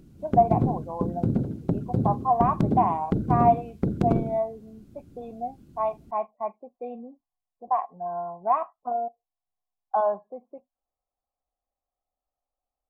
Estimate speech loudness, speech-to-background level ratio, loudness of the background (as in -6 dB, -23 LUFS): -27.5 LUFS, 0.0 dB, -27.5 LUFS